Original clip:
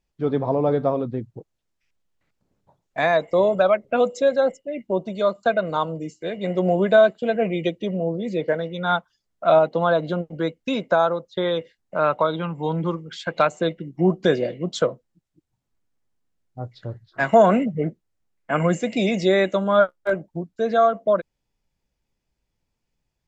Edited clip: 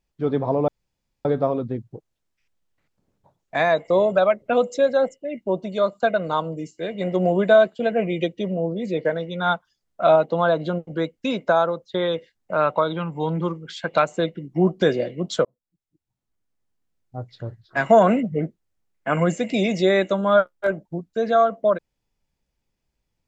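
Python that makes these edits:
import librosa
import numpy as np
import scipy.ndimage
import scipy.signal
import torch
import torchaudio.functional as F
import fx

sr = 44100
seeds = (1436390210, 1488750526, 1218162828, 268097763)

y = fx.edit(x, sr, fx.insert_room_tone(at_s=0.68, length_s=0.57),
    fx.fade_in_span(start_s=14.88, length_s=2.02, curve='qsin'), tone=tone)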